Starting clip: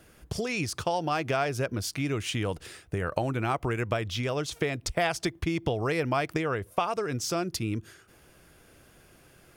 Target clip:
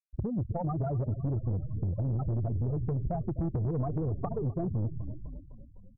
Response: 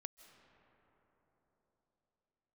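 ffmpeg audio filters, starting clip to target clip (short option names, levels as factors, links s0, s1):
-filter_complex "[0:a]asplit=2[s0][s1];[s1]aeval=exprs='0.0447*(abs(mod(val(0)/0.0447+3,4)-2)-1)':c=same,volume=0.316[s2];[s0][s2]amix=inputs=2:normalize=0,bass=f=250:g=14,treble=f=4000:g=-11[s3];[1:a]atrim=start_sample=2205[s4];[s3][s4]afir=irnorm=-1:irlink=0,atempo=1.6,afftfilt=real='re*gte(hypot(re,im),0.141)':imag='im*gte(hypot(re,im),0.141)':win_size=1024:overlap=0.75,asplit=7[s5][s6][s7][s8][s9][s10][s11];[s6]adelay=253,afreqshift=-30,volume=0.126[s12];[s7]adelay=506,afreqshift=-60,volume=0.0794[s13];[s8]adelay=759,afreqshift=-90,volume=0.0501[s14];[s9]adelay=1012,afreqshift=-120,volume=0.0316[s15];[s10]adelay=1265,afreqshift=-150,volume=0.0197[s16];[s11]adelay=1518,afreqshift=-180,volume=0.0124[s17];[s5][s12][s13][s14][s15][s16][s17]amix=inputs=7:normalize=0,acrossover=split=810|3900[s18][s19][s20];[s18]asoftclip=type=tanh:threshold=0.0531[s21];[s21][s19][s20]amix=inputs=3:normalize=0,acompressor=threshold=0.0282:ratio=6,volume=1.41"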